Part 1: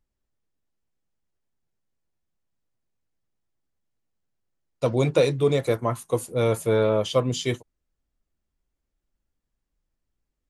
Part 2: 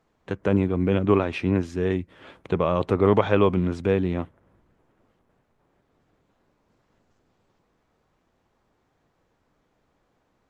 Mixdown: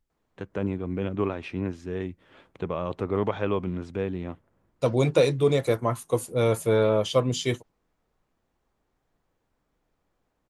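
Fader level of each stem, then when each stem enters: -0.5, -7.5 dB; 0.00, 0.10 s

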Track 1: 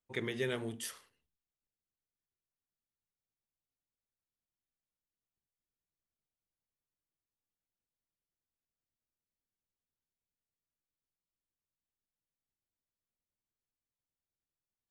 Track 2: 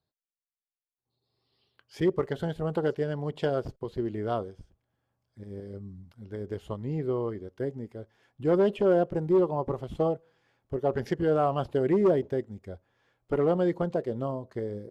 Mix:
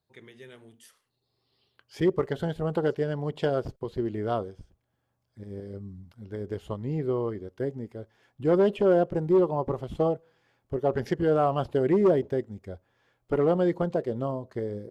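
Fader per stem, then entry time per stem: -12.5, +1.5 dB; 0.00, 0.00 s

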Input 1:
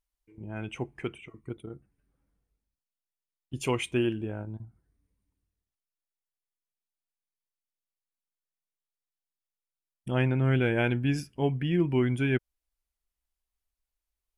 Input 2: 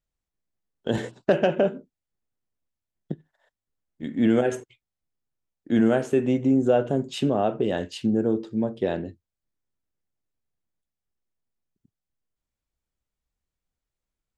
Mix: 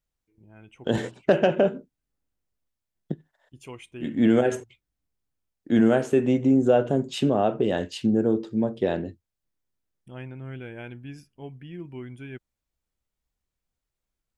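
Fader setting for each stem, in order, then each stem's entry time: -13.0, +1.0 dB; 0.00, 0.00 s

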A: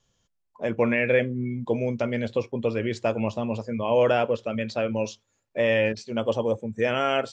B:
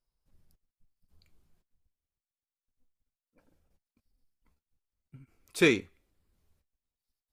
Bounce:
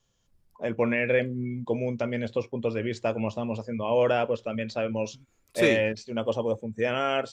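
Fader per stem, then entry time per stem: -2.5, -1.5 dB; 0.00, 0.00 s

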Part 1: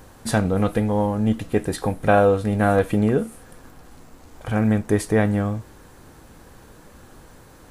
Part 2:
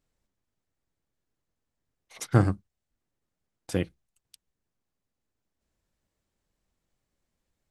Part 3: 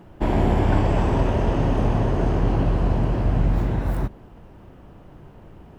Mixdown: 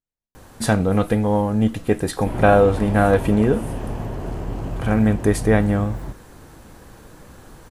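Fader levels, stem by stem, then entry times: +2.0, -15.0, -7.5 dB; 0.35, 0.00, 2.05 s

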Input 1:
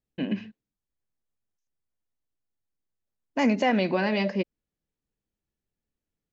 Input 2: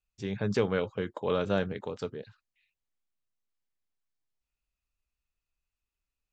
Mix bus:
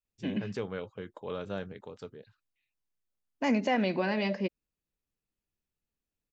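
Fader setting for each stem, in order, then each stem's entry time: -4.5, -8.5 dB; 0.05, 0.00 s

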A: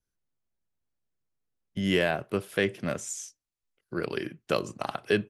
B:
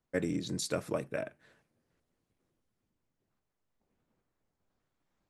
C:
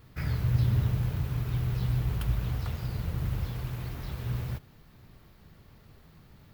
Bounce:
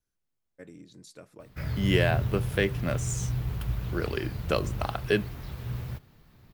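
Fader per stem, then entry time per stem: 0.0, -15.0, -2.0 dB; 0.00, 0.45, 1.40 s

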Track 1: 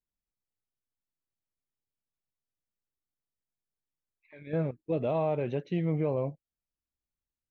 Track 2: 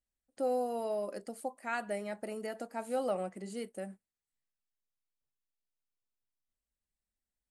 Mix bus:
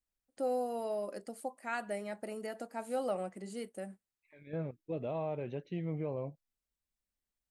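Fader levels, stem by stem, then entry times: -8.0, -1.5 dB; 0.00, 0.00 s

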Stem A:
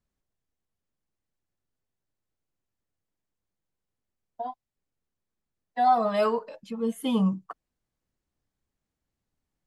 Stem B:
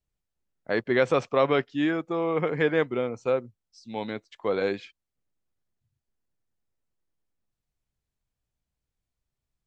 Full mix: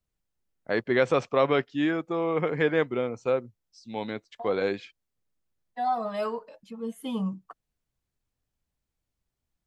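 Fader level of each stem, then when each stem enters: -6.0, -0.5 dB; 0.00, 0.00 s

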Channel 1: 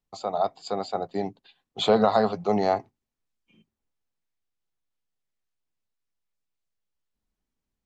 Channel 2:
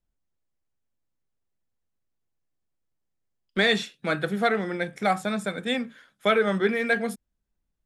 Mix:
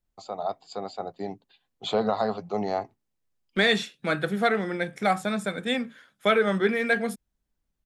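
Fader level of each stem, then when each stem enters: -5.0, 0.0 dB; 0.05, 0.00 s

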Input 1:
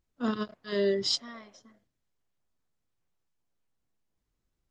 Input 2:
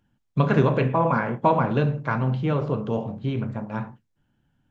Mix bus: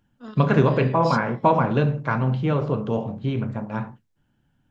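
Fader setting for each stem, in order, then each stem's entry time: -10.0, +1.5 dB; 0.00, 0.00 s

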